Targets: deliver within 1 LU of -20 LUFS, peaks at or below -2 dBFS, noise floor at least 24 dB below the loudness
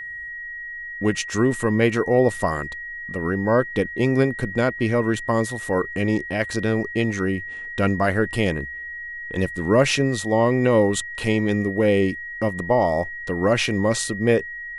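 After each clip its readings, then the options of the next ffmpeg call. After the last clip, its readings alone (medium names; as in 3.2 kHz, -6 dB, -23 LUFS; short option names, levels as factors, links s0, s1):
steady tone 1.9 kHz; tone level -31 dBFS; loudness -22.0 LUFS; peak level -5.5 dBFS; loudness target -20.0 LUFS
-> -af "bandreject=f=1900:w=30"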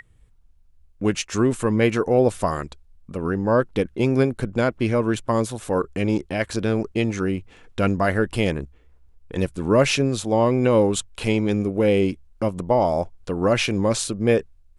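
steady tone not found; loudness -22.0 LUFS; peak level -5.0 dBFS; loudness target -20.0 LUFS
-> -af "volume=1.26"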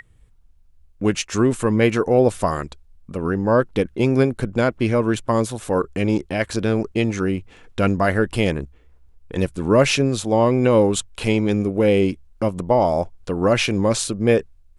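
loudness -20.0 LUFS; peak level -3.0 dBFS; noise floor -53 dBFS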